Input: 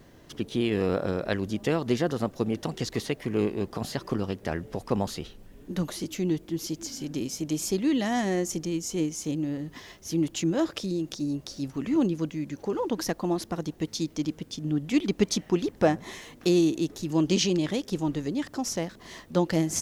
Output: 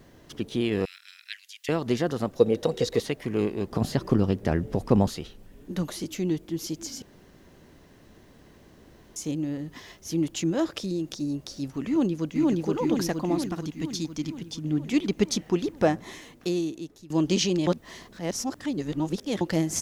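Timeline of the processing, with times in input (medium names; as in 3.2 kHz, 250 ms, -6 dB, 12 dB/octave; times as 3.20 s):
0.85–1.69 s: steep high-pass 2 kHz
2.39–3.00 s: small resonant body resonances 490/3800 Hz, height 16 dB
3.71–5.09 s: bass shelf 500 Hz +9 dB
7.02–9.16 s: room tone
11.88–12.66 s: echo throw 470 ms, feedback 65%, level 0 dB
13.46–14.64 s: peaking EQ 540 Hz -7.5 dB 0.97 oct
15.90–17.10 s: fade out, to -17.5 dB
17.67–19.41 s: reverse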